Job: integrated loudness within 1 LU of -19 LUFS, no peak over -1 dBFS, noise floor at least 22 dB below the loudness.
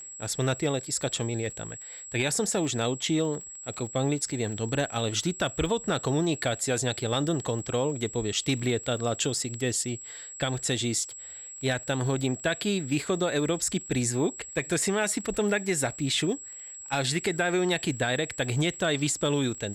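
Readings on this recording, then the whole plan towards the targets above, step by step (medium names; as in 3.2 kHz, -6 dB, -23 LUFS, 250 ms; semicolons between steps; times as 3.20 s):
tick rate 20 per s; steady tone 7.7 kHz; tone level -40 dBFS; loudness -28.0 LUFS; peak level -14.5 dBFS; loudness target -19.0 LUFS
-> de-click; band-stop 7.7 kHz, Q 30; trim +9 dB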